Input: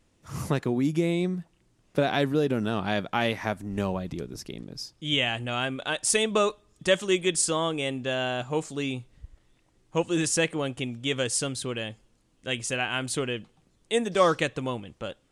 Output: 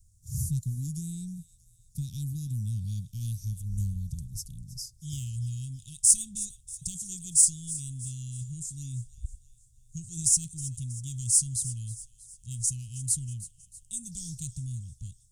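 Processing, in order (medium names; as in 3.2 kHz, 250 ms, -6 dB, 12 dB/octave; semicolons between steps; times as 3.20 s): in parallel at -9 dB: saturation -24 dBFS, distortion -9 dB; on the sum: inverse Chebyshev band-stop 500–1700 Hz, stop band 80 dB; feedback echo behind a high-pass 319 ms, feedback 50%, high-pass 2.1 kHz, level -16 dB; trim +6 dB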